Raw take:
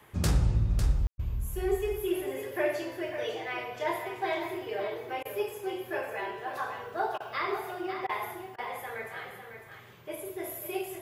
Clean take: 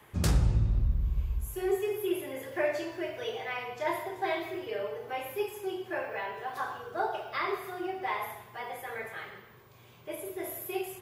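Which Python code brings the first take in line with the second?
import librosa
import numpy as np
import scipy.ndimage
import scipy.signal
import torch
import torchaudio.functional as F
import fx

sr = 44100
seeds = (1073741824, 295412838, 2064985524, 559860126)

y = fx.fix_ambience(x, sr, seeds[0], print_start_s=9.57, print_end_s=10.07, start_s=1.07, end_s=1.18)
y = fx.fix_interpolate(y, sr, at_s=(1.17, 5.23, 7.18, 8.07, 8.56), length_ms=21.0)
y = fx.fix_echo_inverse(y, sr, delay_ms=551, level_db=-8.5)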